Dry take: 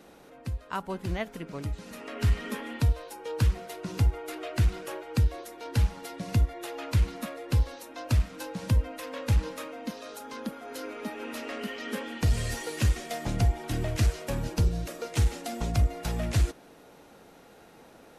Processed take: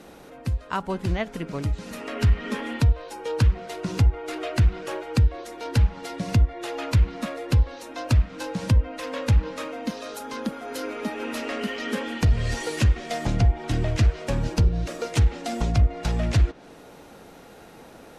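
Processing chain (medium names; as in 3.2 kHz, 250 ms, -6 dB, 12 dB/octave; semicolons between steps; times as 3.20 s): low-pass that closes with the level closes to 2.9 kHz, closed at -20.5 dBFS; bass shelf 140 Hz +3.5 dB; in parallel at +0.5 dB: compression, threshold -29 dBFS, peak gain reduction 12.5 dB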